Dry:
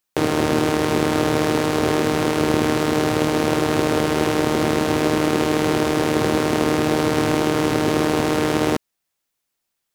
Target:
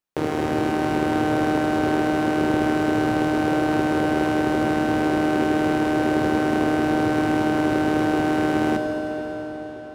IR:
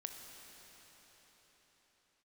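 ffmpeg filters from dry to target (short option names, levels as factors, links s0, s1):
-filter_complex "[0:a]highshelf=f=2500:g=-9[s0];[1:a]atrim=start_sample=2205[s1];[s0][s1]afir=irnorm=-1:irlink=0"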